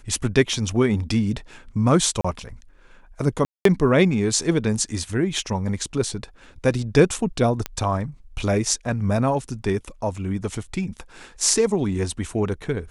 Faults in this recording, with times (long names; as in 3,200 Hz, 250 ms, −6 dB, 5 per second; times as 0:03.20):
0:02.21–0:02.25: drop-out 35 ms
0:03.45–0:03.65: drop-out 203 ms
0:07.66: click −10 dBFS